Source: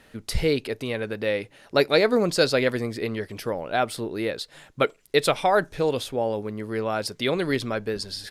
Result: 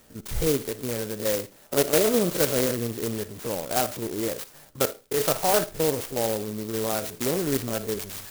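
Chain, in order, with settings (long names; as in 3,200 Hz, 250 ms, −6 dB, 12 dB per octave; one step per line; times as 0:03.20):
spectrum averaged block by block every 50 ms
convolution reverb RT60 0.30 s, pre-delay 15 ms, DRR 14 dB
converter with an unsteady clock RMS 0.13 ms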